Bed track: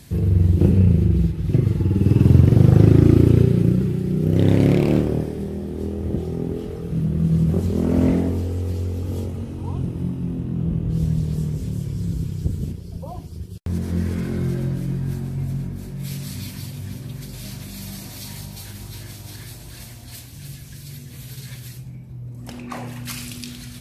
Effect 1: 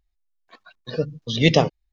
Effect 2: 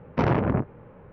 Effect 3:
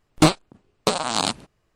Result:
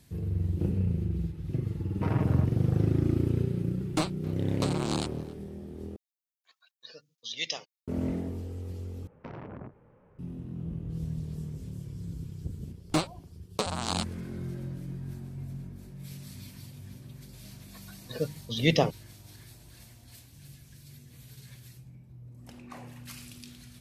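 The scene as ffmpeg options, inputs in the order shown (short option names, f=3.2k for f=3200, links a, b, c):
-filter_complex "[2:a]asplit=2[a][b];[3:a]asplit=2[c][d];[1:a]asplit=2[e][f];[0:a]volume=-13.5dB[g];[a]aecho=1:1:6.4:0.62[h];[c]asplit=2[i][j];[j]adelay=270,highpass=300,lowpass=3.4k,asoftclip=type=hard:threshold=-16.5dB,volume=-17dB[k];[i][k]amix=inputs=2:normalize=0[l];[e]aderivative[m];[b]acompressor=threshold=-26dB:ratio=6:attack=3.2:release=140:knee=1:detection=peak[n];[d]dynaudnorm=f=110:g=5:m=6dB[o];[g]asplit=3[p][q][r];[p]atrim=end=5.964[s];[m]atrim=end=1.92,asetpts=PTS-STARTPTS,volume=-3.5dB[t];[q]atrim=start=7.876:end=9.074[u];[n]atrim=end=1.12,asetpts=PTS-STARTPTS,volume=-12dB[v];[r]atrim=start=10.186[w];[h]atrim=end=1.12,asetpts=PTS-STARTPTS,volume=-12.5dB,afade=t=in:d=0.004:c=hsin,afade=t=out:st=1.116:d=0.004:c=hsin,adelay=1840[x];[l]atrim=end=1.75,asetpts=PTS-STARTPTS,volume=-13dB,afade=t=in:d=0.004:c=hsin,afade=t=out:st=1.746:d=0.004:c=hsin,adelay=3750[y];[o]atrim=end=1.75,asetpts=PTS-STARTPTS,volume=-13.5dB,afade=t=in:d=0.004:c=hsin,afade=t=out:st=1.746:d=0.004:c=hsin,adelay=12720[z];[f]atrim=end=1.92,asetpts=PTS-STARTPTS,volume=-7dB,afade=t=in:d=0.004:c=hsin,afade=t=out:st=1.916:d=0.004:c=hsin,adelay=17220[aa];[s][t]acrossfade=d=0.004:c1=hsin:c2=hsin[ab];[ab][u]acrossfade=d=0.004:c1=hsin:c2=hsin[ac];[ac][v]acrossfade=d=0.004:c1=hsin:c2=hsin[ad];[ad][w]acrossfade=d=0.004:c1=hsin:c2=hsin[ae];[ae][x][y][z][aa]amix=inputs=5:normalize=0"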